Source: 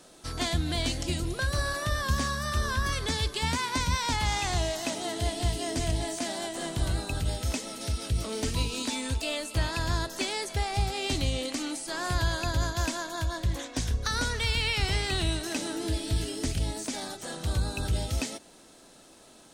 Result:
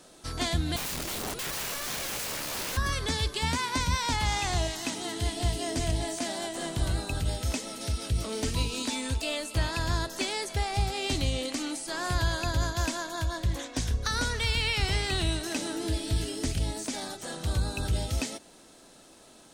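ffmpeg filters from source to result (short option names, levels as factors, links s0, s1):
-filter_complex "[0:a]asettb=1/sr,asplit=3[s0][s1][s2];[s0]atrim=end=0.764[s3];[s1]atrim=start=0.76:end=2.77,asetpts=PTS-STARTPTS,afade=t=in:d=0.004:c=qsin,afade=t=out:st=2.006:d=0.004:c=qsin,aeval=exprs='(mod(28.2*val(0)+1,2)-1)/28.2':c=same[s4];[s2]atrim=start=2.766[s5];[s3][s4]acrossfade=d=0.004:c1=hsin:c2=qsin[s6];[s6][s5]acrossfade=d=0.004:c1=qsin:c2=hsin,asettb=1/sr,asplit=3[s7][s8][s9];[s7]atrim=end=4.674[s10];[s8]atrim=start=4.67:end=5.37,asetpts=PTS-STARTPTS,afade=t=in:d=0.004:c=qsin,afade=t=out:st=0.696:d=0.004:c=qsin,equalizer=f=610:t=o:w=0.29:g=-13[s11];[s9]atrim=start=5.366[s12];[s10][s11]acrossfade=d=0.004:c1=hsin:c2=qsin[s13];[s13][s12]acrossfade=d=0.004:c1=qsin:c2=hsin"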